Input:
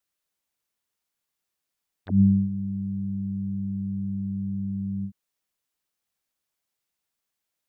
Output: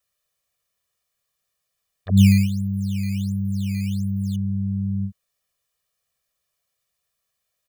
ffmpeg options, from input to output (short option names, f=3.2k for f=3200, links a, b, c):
-filter_complex "[0:a]asettb=1/sr,asplit=3[a][b][c];[a]atrim=end=2.174[d];[b]atrim=start=2.17:end=4.36,asetpts=PTS-STARTPTS,afade=t=in:d=0.004:c=qsin,afade=t=out:st=2.186:d=0.004:c=qsin,acrusher=samples=11:mix=1:aa=0.000001:lfo=1:lforange=17.6:lforate=1.4[e];[c]atrim=start=4.356[f];[d][e]acrossfade=d=0.004:c1=hsin:c2=qsin[g];[g][f]acrossfade=d=0.004:c1=qsin:c2=hsin,equalizer=f=90:t=o:w=1.6:g=2,aecho=1:1:1.7:0.84,volume=3dB"